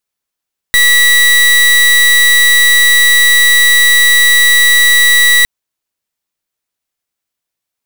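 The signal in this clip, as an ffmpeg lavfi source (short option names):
-f lavfi -i "aevalsrc='0.447*(2*lt(mod(1950*t,1),0.3)-1)':d=4.71:s=44100"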